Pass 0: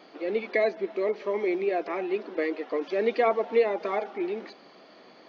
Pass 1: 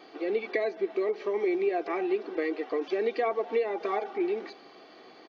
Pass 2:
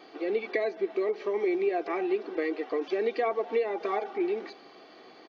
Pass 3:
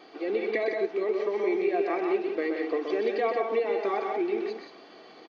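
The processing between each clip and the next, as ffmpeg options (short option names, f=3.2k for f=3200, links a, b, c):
-af "acompressor=threshold=-27dB:ratio=3,aecho=1:1:2.6:0.45"
-af anull
-filter_complex "[0:a]asplit=2[a][b];[b]aecho=0:1:126|176:0.531|0.531[c];[a][c]amix=inputs=2:normalize=0,aresample=22050,aresample=44100"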